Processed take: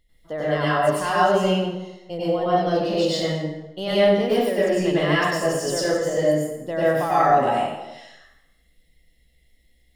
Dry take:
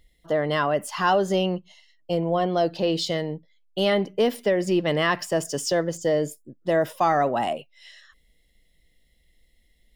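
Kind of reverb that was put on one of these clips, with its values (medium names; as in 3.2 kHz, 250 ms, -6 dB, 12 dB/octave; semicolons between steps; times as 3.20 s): plate-style reverb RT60 0.95 s, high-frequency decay 0.75×, pre-delay 85 ms, DRR -9.5 dB; trim -7 dB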